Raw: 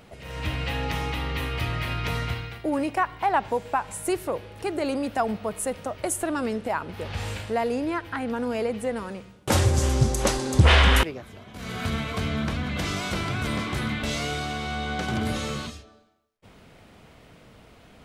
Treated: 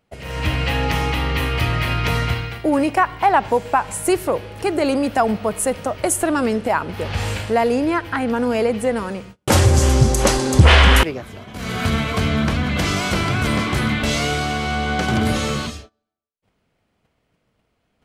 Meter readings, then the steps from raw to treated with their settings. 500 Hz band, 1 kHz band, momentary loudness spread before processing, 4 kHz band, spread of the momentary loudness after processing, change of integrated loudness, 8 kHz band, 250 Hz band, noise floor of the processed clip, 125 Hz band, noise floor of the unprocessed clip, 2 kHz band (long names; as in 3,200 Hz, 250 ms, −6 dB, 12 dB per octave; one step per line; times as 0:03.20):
+8.0 dB, +7.5 dB, 10 LU, +6.5 dB, 9 LU, +7.5 dB, +7.5 dB, +8.0 dB, −70 dBFS, +7.0 dB, −52 dBFS, +7.5 dB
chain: notch filter 3,700 Hz, Q 25
noise gate −46 dBFS, range −26 dB
in parallel at +0.5 dB: brickwall limiter −14 dBFS, peak gain reduction 6.5 dB
on the sum: level +2 dB